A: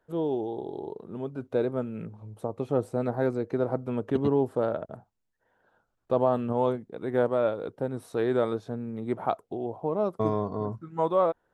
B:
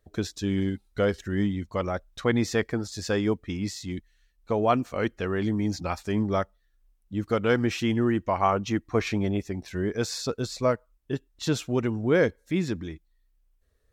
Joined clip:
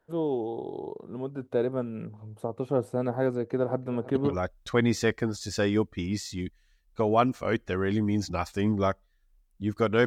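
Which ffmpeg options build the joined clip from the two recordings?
ffmpeg -i cue0.wav -i cue1.wav -filter_complex "[0:a]asettb=1/sr,asplit=3[link_01][link_02][link_03];[link_01]atrim=end=3.374[link_04];[link_02]atrim=start=3.37:end=4.35,asetpts=PTS-STARTPTS,afade=type=in:duration=0.004:curve=qsin,afade=type=out:start_time=0.976:duration=0.004:curve=qsin,aecho=1:1:324|648|972|1296|1620:0.119|0.0701|0.0414|0.0244|0.0144,atrim=end_sample=43218[link_05];[link_03]atrim=start=4.346[link_06];[link_04][link_05]acrossfade=duration=0.004:curve1=hsin:curve2=qsin[link_07];[link_07][link_06]acrossfade=duration=0.004:curve1=qsin:curve2=hsin,apad=whole_dur=10.06,atrim=end=10.06,atrim=end=4.35,asetpts=PTS-STARTPTS[link_08];[1:a]atrim=start=1.78:end=7.57,asetpts=PTS-STARTPTS[link_09];[link_08][link_09]acrossfade=duration=0.08:curve1=tri:curve2=tri" out.wav

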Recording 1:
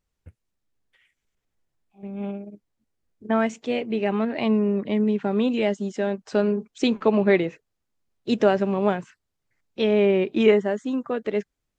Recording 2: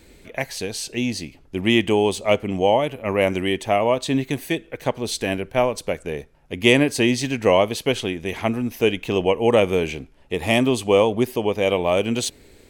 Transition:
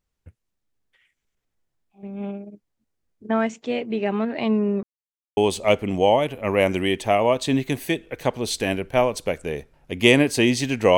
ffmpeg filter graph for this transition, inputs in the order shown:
ffmpeg -i cue0.wav -i cue1.wav -filter_complex "[0:a]apad=whole_dur=10.97,atrim=end=10.97,asplit=2[link_01][link_02];[link_01]atrim=end=4.83,asetpts=PTS-STARTPTS,afade=type=out:start_time=4.826:duration=0.004:curve=hsin[link_03];[link_02]atrim=start=4.83:end=5.37,asetpts=PTS-STARTPTS,volume=0[link_04];[1:a]atrim=start=1.98:end=7.58,asetpts=PTS-STARTPTS,afade=type=in:duration=0.004:curve=hsin[link_05];[link_03][link_04][link_05]concat=n=3:v=0:a=1" out.wav

